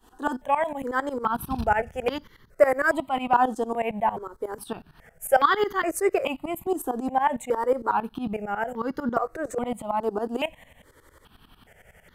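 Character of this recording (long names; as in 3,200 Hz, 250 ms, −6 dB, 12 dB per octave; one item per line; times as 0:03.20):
tremolo saw up 11 Hz, depth 90%
notches that jump at a steady rate 2.4 Hz 580–2,500 Hz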